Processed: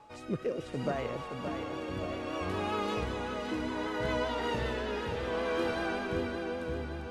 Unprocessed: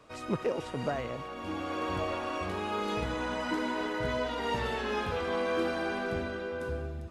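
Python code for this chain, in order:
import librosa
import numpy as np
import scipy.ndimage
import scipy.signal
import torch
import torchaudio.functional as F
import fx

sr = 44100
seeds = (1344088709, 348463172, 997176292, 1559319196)

p1 = fx.vibrato(x, sr, rate_hz=5.2, depth_cents=34.0)
p2 = p1 + 10.0 ** (-51.0 / 20.0) * np.sin(2.0 * np.pi * 850.0 * np.arange(len(p1)) / sr)
p3 = fx.rotary(p2, sr, hz=0.65)
y = p3 + fx.echo_feedback(p3, sr, ms=571, feedback_pct=53, wet_db=-7.0, dry=0)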